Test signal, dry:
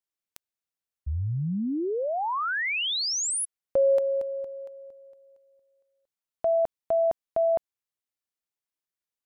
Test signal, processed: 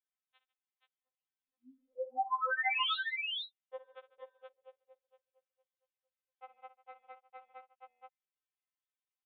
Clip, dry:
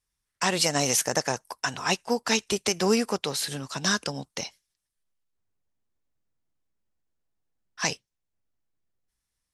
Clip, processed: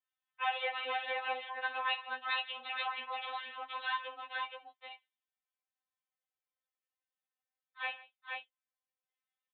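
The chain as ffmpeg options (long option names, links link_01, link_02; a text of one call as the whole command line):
ffmpeg -i in.wav -af "aeval=exprs='clip(val(0),-1,0.075)':channel_layout=same,highpass=frequency=630:width=0.5412,highpass=frequency=630:width=1.3066,aecho=1:1:60|148|476:0.2|0.112|0.668,aresample=8000,aresample=44100,afftfilt=real='re*3.46*eq(mod(b,12),0)':imag='im*3.46*eq(mod(b,12),0)':win_size=2048:overlap=0.75,volume=-3.5dB" out.wav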